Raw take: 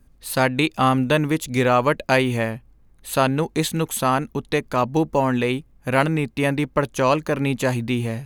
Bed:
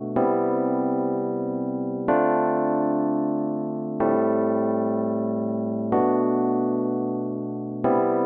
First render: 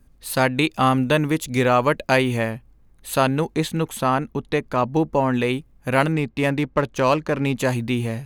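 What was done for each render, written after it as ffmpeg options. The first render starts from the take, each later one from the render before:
-filter_complex "[0:a]asettb=1/sr,asplit=3[a][b][c];[a]atrim=end=3.544[d];[b]atrim=start=3.54:end=5.34,asetpts=PTS-STARTPTS,afade=t=in:d=0.004:c=qsin,afade=t=out:st=1.796:d=0.004:c=qsin,highshelf=f=4.4k:g=-8.5[e];[c]atrim=start=5.336[f];[d][e]acrossfade=d=0.004:c1=hsin:c2=qsin[g];[g][f]acrossfade=d=0.004:c1=qsin:c2=hsin,asettb=1/sr,asplit=3[h][i][j];[h]atrim=end=6.124[k];[i]atrim=start=6.12:end=7.55,asetpts=PTS-STARTPTS,afade=t=in:d=0.004:c=qsin,afade=t=out:st=1.426:d=0.004:c=qsin,adynamicsmooth=sensitivity=5.5:basefreq=3.5k[l];[j]atrim=start=7.546[m];[k][l]acrossfade=d=0.004:c1=hsin:c2=qsin[n];[n][m]acrossfade=d=0.004:c1=qsin:c2=hsin"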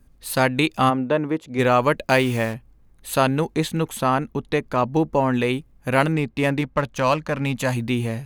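-filter_complex "[0:a]asplit=3[a][b][c];[a]afade=t=out:st=0.89:d=0.02[d];[b]bandpass=f=550:t=q:w=0.61,afade=t=in:st=0.89:d=0.02,afade=t=out:st=1.58:d=0.02[e];[c]afade=t=in:st=1.58:d=0.02[f];[d][e][f]amix=inputs=3:normalize=0,asettb=1/sr,asplit=3[g][h][i];[g]atrim=end=2.094[j];[h]atrim=start=2.09:end=2.54,asetpts=PTS-STARTPTS,afade=t=in:d=0.004:c=qsin,afade=t=out:st=0.446:d=0.004:c=qsin,acrusher=bits=5:mix=0:aa=0.5[k];[i]atrim=start=2.536[l];[j][k]acrossfade=d=0.004:c1=hsin:c2=qsin[m];[m][l]acrossfade=d=0.004:c1=qsin:c2=hsin,asettb=1/sr,asplit=3[n][o][p];[n]atrim=end=6.614[q];[o]atrim=start=6.61:end=7.77,asetpts=PTS-STARTPTS,afade=t=in:d=0.004:c=qsin,afade=t=out:st=1.156:d=0.004:c=qsin,equalizer=f=370:t=o:w=0.47:g=-11.5[r];[p]atrim=start=7.766[s];[q][r]acrossfade=d=0.004:c1=hsin:c2=qsin[t];[t][s]acrossfade=d=0.004:c1=qsin:c2=hsin"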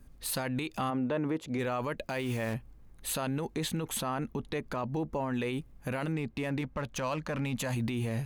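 -af "acompressor=threshold=-22dB:ratio=6,alimiter=limit=-24dB:level=0:latency=1:release=20"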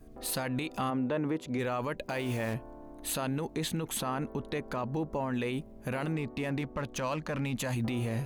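-filter_complex "[1:a]volume=-26.5dB[a];[0:a][a]amix=inputs=2:normalize=0"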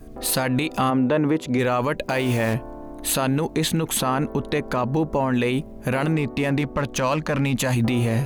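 -af "volume=11dB"

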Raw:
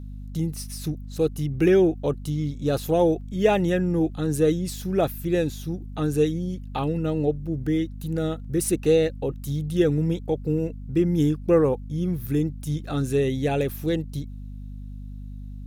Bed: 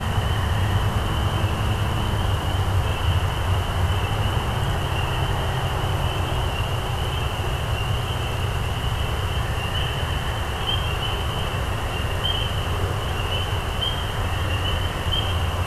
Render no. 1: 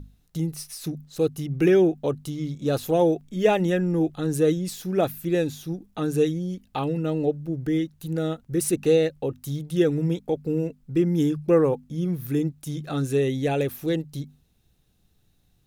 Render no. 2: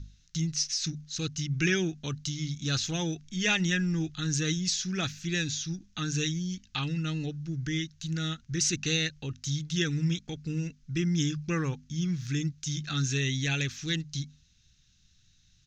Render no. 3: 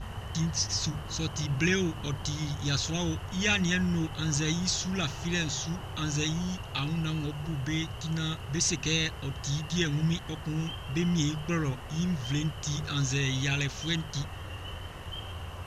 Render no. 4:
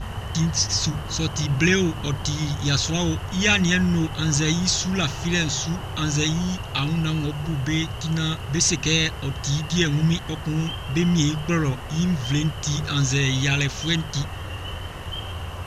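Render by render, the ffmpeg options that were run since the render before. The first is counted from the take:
-af "bandreject=f=50:t=h:w=6,bandreject=f=100:t=h:w=6,bandreject=f=150:t=h:w=6,bandreject=f=200:t=h:w=6,bandreject=f=250:t=h:w=6"
-af "firequalizer=gain_entry='entry(120,0);entry(510,-22);entry(1500,3);entry(6400,14);entry(10000,-30)':delay=0.05:min_phase=1"
-filter_complex "[1:a]volume=-16.5dB[a];[0:a][a]amix=inputs=2:normalize=0"
-af "volume=7.5dB"

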